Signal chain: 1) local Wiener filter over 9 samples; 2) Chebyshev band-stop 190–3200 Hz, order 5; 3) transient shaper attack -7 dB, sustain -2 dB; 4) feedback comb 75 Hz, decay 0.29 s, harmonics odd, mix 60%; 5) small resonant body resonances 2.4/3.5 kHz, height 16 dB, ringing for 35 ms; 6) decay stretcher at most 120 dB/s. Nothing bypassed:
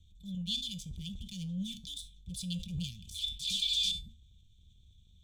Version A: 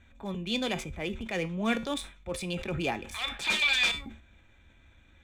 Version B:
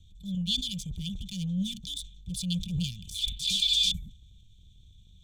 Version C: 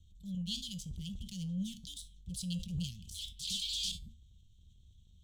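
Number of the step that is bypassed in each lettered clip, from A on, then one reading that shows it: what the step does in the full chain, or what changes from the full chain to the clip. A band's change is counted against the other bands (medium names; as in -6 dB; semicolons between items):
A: 2, 2 kHz band +23.5 dB; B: 4, loudness change +6.0 LU; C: 5, 4 kHz band -6.0 dB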